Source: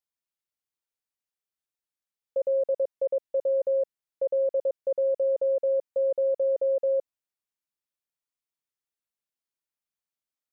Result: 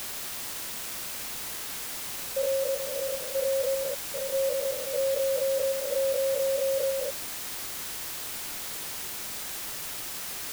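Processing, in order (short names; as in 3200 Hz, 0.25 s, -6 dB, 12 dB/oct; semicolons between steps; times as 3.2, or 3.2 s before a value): stepped spectrum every 0.2 s; requantised 6-bit, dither triangular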